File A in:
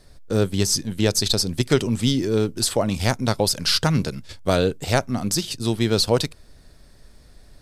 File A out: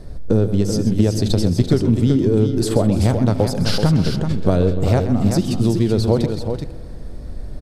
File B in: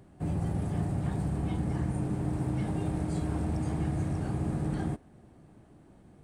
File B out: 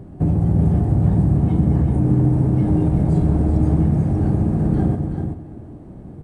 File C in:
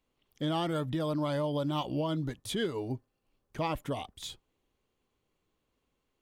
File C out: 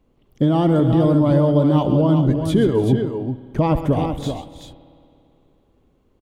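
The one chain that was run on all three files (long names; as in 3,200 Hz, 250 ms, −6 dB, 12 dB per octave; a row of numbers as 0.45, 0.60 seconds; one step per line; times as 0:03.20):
tilt shelving filter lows +9 dB
downward compressor 4 to 1, threshold −24 dBFS
multi-tap delay 76/131/296/339/382 ms −20/−12/−18.5/−19/−7 dB
spring reverb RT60 2.6 s, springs 55 ms, chirp 30 ms, DRR 16 dB
loudness normalisation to −18 LKFS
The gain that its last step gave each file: +8.5, +9.5, +11.5 decibels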